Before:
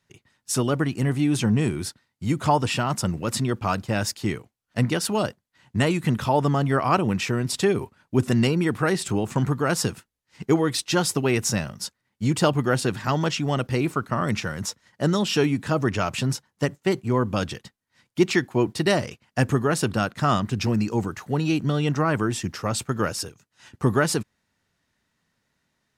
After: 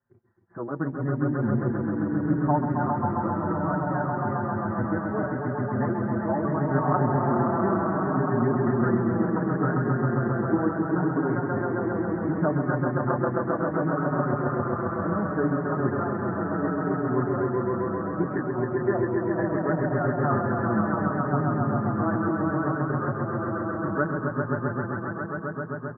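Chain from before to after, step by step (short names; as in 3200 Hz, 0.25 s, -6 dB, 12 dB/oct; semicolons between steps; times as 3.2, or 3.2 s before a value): steep low-pass 1700 Hz 72 dB/oct; low shelf 69 Hz -8.5 dB; notch 460 Hz, Q 12; swelling echo 0.133 s, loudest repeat 5, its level -4.5 dB; endless flanger 5.2 ms -0.69 Hz; gain -3 dB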